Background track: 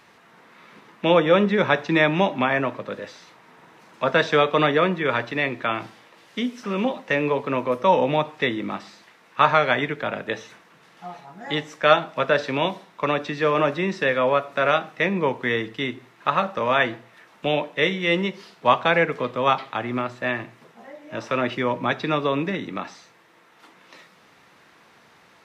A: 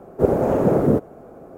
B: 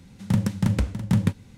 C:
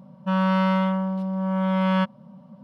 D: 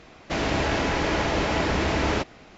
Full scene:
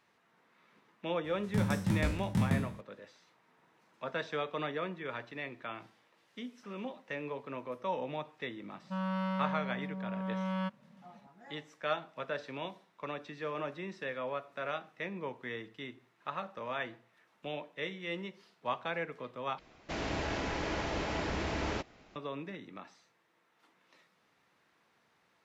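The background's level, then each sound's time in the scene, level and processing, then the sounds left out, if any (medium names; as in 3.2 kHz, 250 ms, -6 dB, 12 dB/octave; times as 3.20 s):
background track -17.5 dB
1.24 s: add B -11 dB + spectral sustain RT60 0.63 s
8.64 s: add C -13.5 dB
19.59 s: replace with D -11 dB
not used: A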